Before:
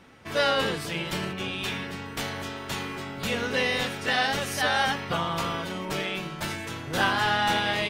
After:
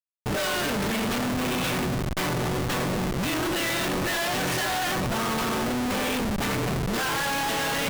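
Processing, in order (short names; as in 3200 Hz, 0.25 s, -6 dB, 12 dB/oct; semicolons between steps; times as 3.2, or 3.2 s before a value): formant-preserving pitch shift +5 st; added harmonics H 5 -22 dB, 6 -15 dB, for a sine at -12 dBFS; Schmitt trigger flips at -31 dBFS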